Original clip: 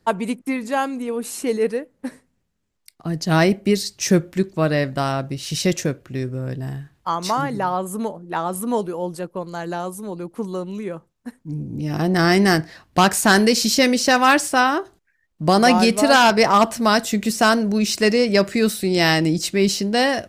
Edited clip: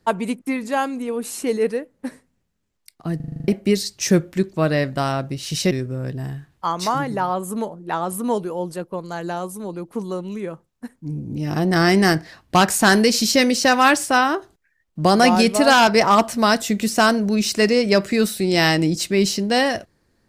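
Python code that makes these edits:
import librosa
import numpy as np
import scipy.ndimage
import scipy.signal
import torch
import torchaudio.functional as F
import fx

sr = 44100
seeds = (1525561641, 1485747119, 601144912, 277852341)

y = fx.edit(x, sr, fx.stutter_over(start_s=3.16, slice_s=0.04, count=8),
    fx.cut(start_s=5.71, length_s=0.43), tone=tone)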